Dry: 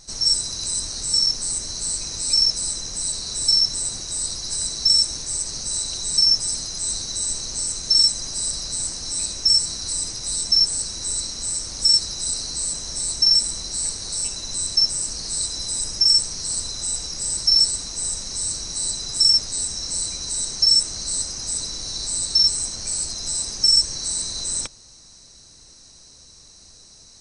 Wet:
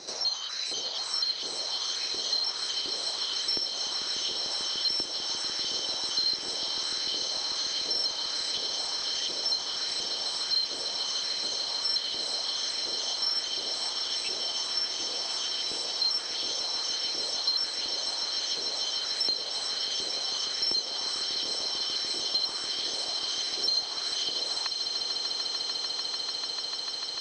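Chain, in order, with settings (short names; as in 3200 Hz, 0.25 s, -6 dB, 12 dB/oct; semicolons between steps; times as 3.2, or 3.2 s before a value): trilling pitch shifter -4.5 st, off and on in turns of 0.244 s; LFO high-pass saw up 1.4 Hz 360–2600 Hz; air absorption 230 m; swelling echo 0.148 s, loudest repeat 8, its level -12 dB; three-band squash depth 70%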